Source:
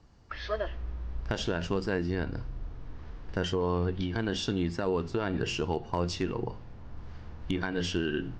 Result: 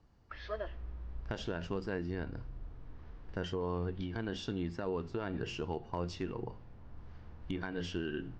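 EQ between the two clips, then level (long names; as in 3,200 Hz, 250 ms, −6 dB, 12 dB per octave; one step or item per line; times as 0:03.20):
high-shelf EQ 4,900 Hz −8.5 dB
−7.0 dB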